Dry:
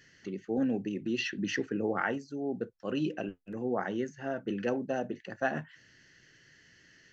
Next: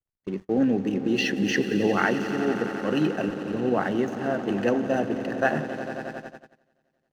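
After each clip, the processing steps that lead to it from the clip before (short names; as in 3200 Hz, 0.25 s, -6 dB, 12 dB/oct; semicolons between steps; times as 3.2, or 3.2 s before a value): swelling echo 89 ms, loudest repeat 5, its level -14.5 dB; backlash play -47 dBFS; gate -41 dBFS, range -29 dB; gain +7.5 dB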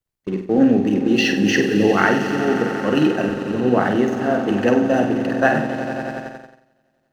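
flutter echo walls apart 8.3 m, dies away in 0.44 s; gain +6 dB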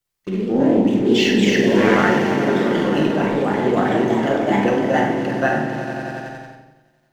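reverb RT60 0.90 s, pre-delay 6 ms, DRR 2.5 dB; echoes that change speed 0.104 s, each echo +2 st, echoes 2; mismatched tape noise reduction encoder only; gain -4 dB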